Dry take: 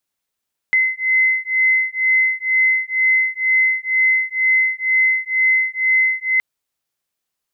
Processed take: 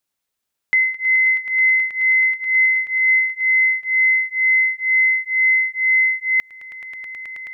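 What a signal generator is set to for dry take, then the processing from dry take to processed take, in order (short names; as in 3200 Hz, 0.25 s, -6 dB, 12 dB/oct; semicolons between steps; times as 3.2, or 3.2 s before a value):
beating tones 2050 Hz, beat 2.1 Hz, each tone -17 dBFS 5.67 s
swelling echo 0.107 s, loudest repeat 8, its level -12.5 dB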